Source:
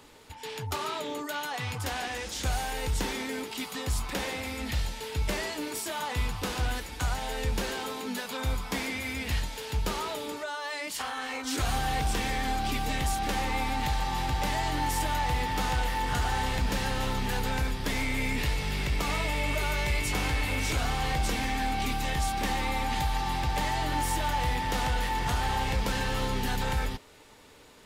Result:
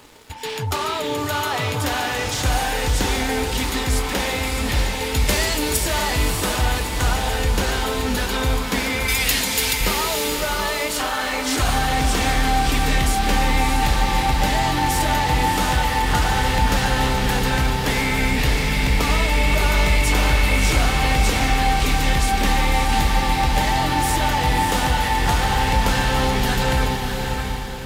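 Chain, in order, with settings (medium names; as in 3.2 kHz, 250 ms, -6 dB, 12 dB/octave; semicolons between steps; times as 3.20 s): in parallel at -1.5 dB: peak limiter -28.5 dBFS, peak gain reduction 8.5 dB; 9.08–9.81 s: on the sum: tilt EQ +4 dB/octave; crossover distortion -53 dBFS; 5.14–5.77 s: treble shelf 4 kHz +9 dB; on a send: echo that smears into a reverb 631 ms, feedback 45%, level -4 dB; on the sum: trim +6 dB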